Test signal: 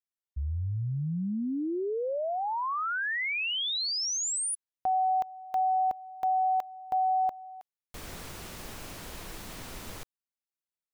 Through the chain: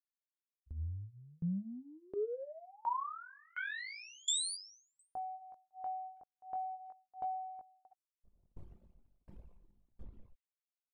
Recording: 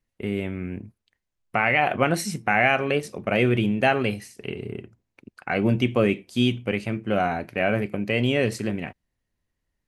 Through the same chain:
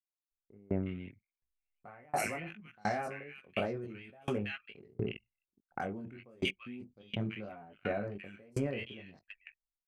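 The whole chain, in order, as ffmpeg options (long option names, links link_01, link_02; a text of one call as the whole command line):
ffmpeg -i in.wav -filter_complex "[0:a]acrossover=split=1600|5100[link_01][link_02][link_03];[link_01]adelay=300[link_04];[link_02]adelay=630[link_05];[link_04][link_05][link_03]amix=inputs=3:normalize=0,flanger=delay=18.5:depth=3.5:speed=0.4,anlmdn=0.631,areverse,acompressor=threshold=-37dB:ratio=12:attack=72:release=26:knee=1:detection=rms,areverse,aeval=exprs='val(0)*pow(10,-32*if(lt(mod(1.4*n/s,1),2*abs(1.4)/1000),1-mod(1.4*n/s,1)/(2*abs(1.4)/1000),(mod(1.4*n/s,1)-2*abs(1.4)/1000)/(1-2*abs(1.4)/1000))/20)':channel_layout=same,volume=4.5dB" out.wav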